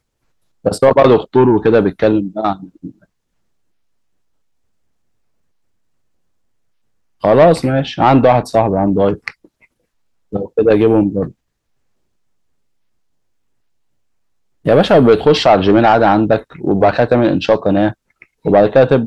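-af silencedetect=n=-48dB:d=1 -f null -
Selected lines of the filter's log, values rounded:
silence_start: 3.05
silence_end: 7.21 | silence_duration: 4.16
silence_start: 11.32
silence_end: 14.65 | silence_duration: 3.32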